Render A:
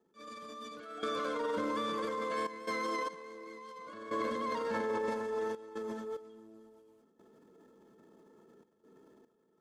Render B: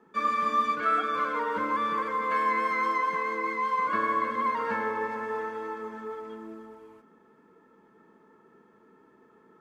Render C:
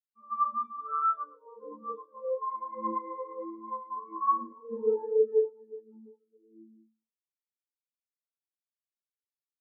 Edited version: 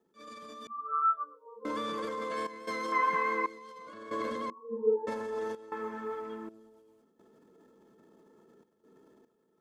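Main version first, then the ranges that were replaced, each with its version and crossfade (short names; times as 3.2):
A
0.67–1.65 from C
2.92–3.46 from B
4.5–5.07 from C
5.72–6.49 from B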